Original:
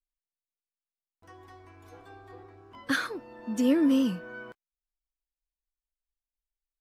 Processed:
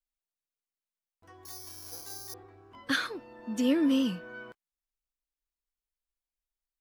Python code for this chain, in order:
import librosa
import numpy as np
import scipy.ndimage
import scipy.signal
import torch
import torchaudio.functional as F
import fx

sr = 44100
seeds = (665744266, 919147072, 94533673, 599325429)

y = fx.dynamic_eq(x, sr, hz=3400.0, q=1.1, threshold_db=-53.0, ratio=4.0, max_db=6)
y = fx.resample_bad(y, sr, factor=8, down='none', up='zero_stuff', at=(1.45, 2.34))
y = y * 10.0 ** (-2.5 / 20.0)